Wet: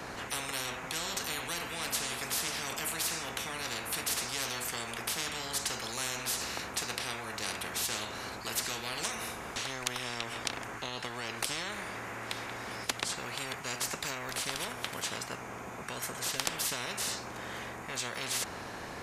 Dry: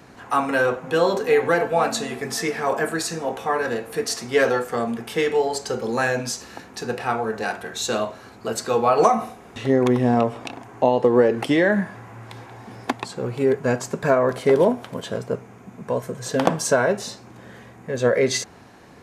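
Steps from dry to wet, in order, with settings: spectrum-flattening compressor 10:1; trim -5.5 dB

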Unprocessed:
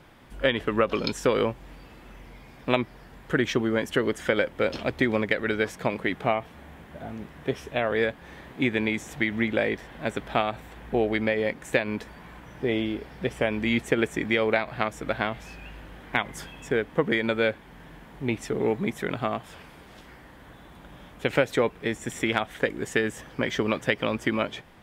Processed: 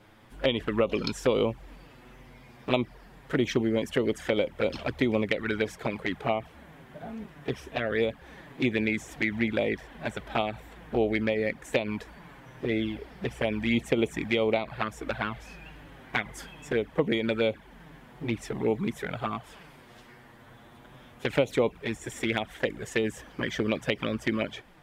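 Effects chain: touch-sensitive flanger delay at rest 10.4 ms, full sweep at -20 dBFS

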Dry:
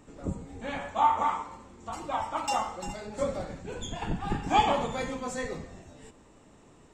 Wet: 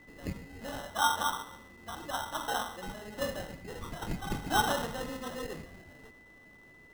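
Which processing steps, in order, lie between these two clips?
sample-and-hold 19×; whistle 2 kHz -51 dBFS; trim -4.5 dB

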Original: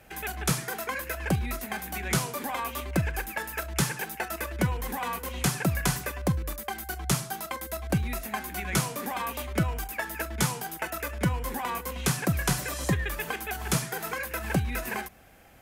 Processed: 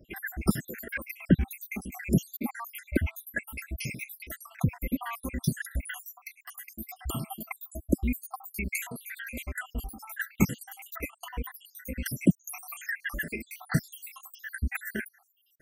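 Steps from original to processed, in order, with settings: random holes in the spectrogram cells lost 80%; graphic EQ 125/250/500/1000/2000/4000/8000 Hz -4/+9/-6/-10/+6/-11/-5 dB; trim +4.5 dB

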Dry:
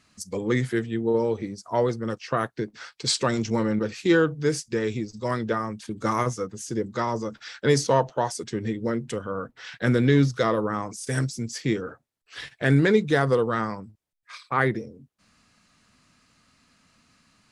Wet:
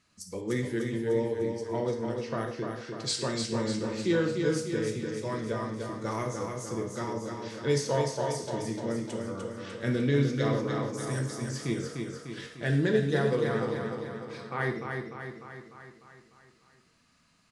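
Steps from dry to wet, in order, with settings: feedback delay 299 ms, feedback 55%, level -5 dB; gated-style reverb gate 200 ms falling, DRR 3 dB; dynamic bell 1.2 kHz, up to -5 dB, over -39 dBFS, Q 1.6; 12.68–13.32 s: band-stop 2.2 kHz, Q 6.5; trim -8 dB

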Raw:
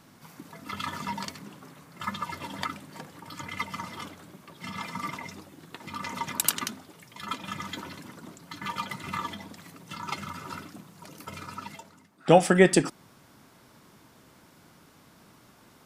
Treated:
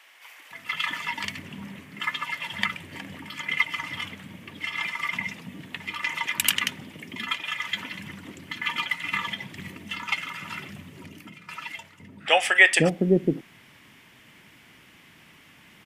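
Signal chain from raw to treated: high-order bell 2.4 kHz +12.5 dB 1.1 oct; 10.83–11.49 s: compression 16:1, threshold -45 dBFS, peak gain reduction 16 dB; bands offset in time highs, lows 510 ms, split 540 Hz

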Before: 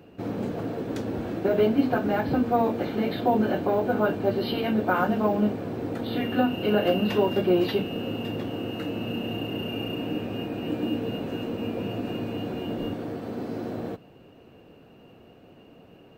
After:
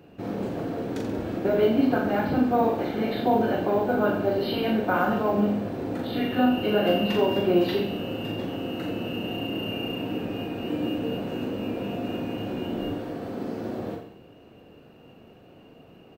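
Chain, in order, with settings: reverse bouncing-ball echo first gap 40 ms, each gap 1.1×, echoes 5; trim -1.5 dB

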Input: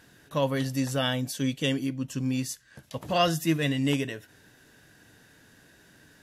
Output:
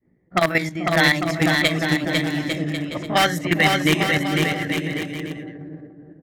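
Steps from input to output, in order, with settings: pitch bend over the whole clip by +3.5 st ending unshifted; feedback echo behind a low-pass 440 ms, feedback 47%, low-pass 500 Hz, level -3 dB; in parallel at -4 dB: integer overflow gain 17 dB; on the sum: peaking EQ 1.9 kHz +14 dB 0.78 oct; level held to a coarse grid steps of 10 dB; expander -44 dBFS; level-controlled noise filter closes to 330 Hz, open at -21 dBFS; on a send: bouncing-ball echo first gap 500 ms, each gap 0.7×, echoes 5; on the sum: trim +4.5 dB

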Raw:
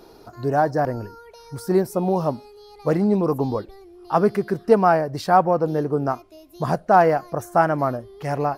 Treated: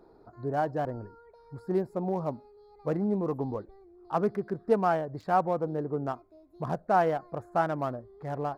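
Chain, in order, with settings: local Wiener filter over 15 samples; trim -9 dB

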